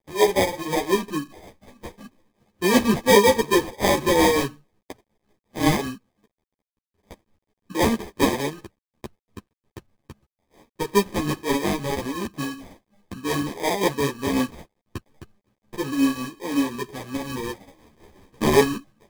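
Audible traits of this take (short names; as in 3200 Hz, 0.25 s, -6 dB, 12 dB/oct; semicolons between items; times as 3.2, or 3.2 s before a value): aliases and images of a low sample rate 1400 Hz, jitter 0%; tremolo triangle 5.5 Hz, depth 65%; a quantiser's noise floor 12-bit, dither none; a shimmering, thickened sound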